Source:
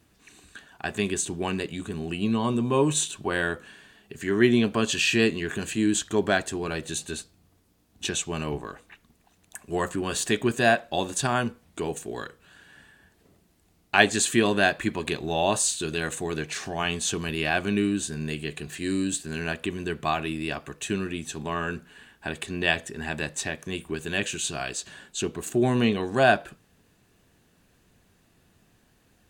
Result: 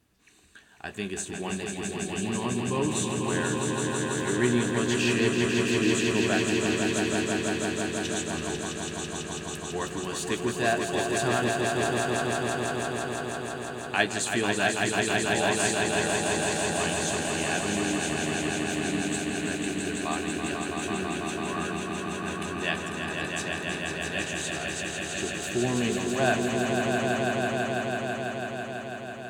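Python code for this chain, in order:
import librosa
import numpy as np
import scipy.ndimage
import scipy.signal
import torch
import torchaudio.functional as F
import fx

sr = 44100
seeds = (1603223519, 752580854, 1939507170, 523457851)

y = fx.doubler(x, sr, ms=16.0, db=-11.5)
y = fx.echo_swell(y, sr, ms=165, loudest=5, wet_db=-5)
y = y * librosa.db_to_amplitude(-6.5)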